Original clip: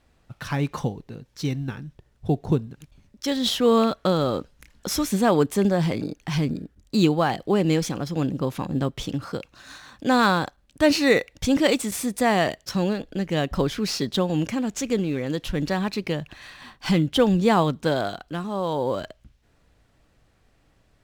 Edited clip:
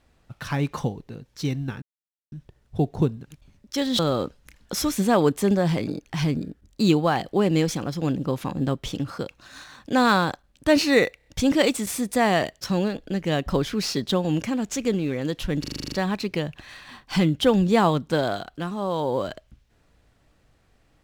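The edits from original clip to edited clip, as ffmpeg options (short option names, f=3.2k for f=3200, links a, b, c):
-filter_complex "[0:a]asplit=14[a][b][c][d][e][f][g][h][i][j][k][l][m][n];[a]atrim=end=1.82,asetpts=PTS-STARTPTS,afade=t=out:st=1.816:d=0.004:c=hsin,apad=pad_dur=0.5[o];[b]atrim=start=1.82:end=3.492,asetpts=PTS-STARTPTS,afade=t=in:d=0.004:c=hsin[p];[c]atrim=start=4.128:end=11.342[q];[d]atrim=start=11.308:end=11.342[r];[e]atrim=start=11.308:end=11.342[s];[f]atrim=start=11.308:end=15.692[t];[g]atrim=start=15.648:end=15.692[u];[h]atrim=start=15.648:end=15.692[v];[i]atrim=start=15.648:end=15.692[w];[j]atrim=start=15.648:end=15.692[x];[k]atrim=start=15.648:end=15.692[y];[l]atrim=start=15.648:end=15.692[z];[m]atrim=start=15.648:end=15.692[aa];[n]atrim=start=15.648[ab];[o][p]concat=n=2:v=0:a=1[ac];[ac][q]acrossfade=d=0.004:c1=hsin:c2=hsin[ad];[ad][r]acrossfade=d=0.004:c1=hsin:c2=hsin[ae];[ae][s]acrossfade=d=0.004:c1=hsin:c2=hsin[af];[af][t]acrossfade=d=0.004:c1=hsin:c2=hsin[ag];[ag][u]acrossfade=d=0.004:c1=hsin:c2=hsin[ah];[ah][v]acrossfade=d=0.004:c1=hsin:c2=hsin[ai];[ai][w]acrossfade=d=0.004:c1=hsin:c2=hsin[aj];[aj][x]acrossfade=d=0.004:c1=hsin:c2=hsin[ak];[ak][y]acrossfade=d=0.004:c1=hsin:c2=hsin[al];[al][z]acrossfade=d=0.004:c1=hsin:c2=hsin[am];[am][aa]acrossfade=d=0.004:c1=hsin:c2=hsin[an];[an][ab]acrossfade=d=0.004:c1=hsin:c2=hsin"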